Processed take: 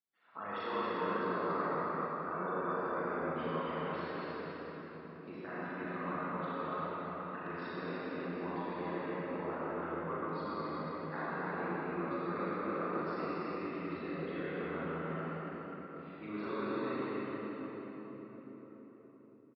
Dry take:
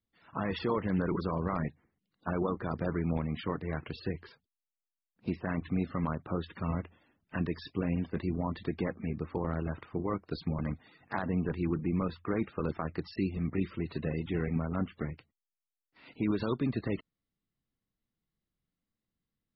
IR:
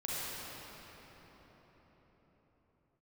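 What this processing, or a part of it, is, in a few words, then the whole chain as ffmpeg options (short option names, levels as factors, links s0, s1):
station announcement: -filter_complex "[0:a]highpass=350,lowpass=3800,equalizer=f=1300:t=o:w=0.58:g=6,aecho=1:1:37.9|282.8:0.562|0.708[s0];[1:a]atrim=start_sample=2205[s1];[s0][s1]afir=irnorm=-1:irlink=0,volume=0.398"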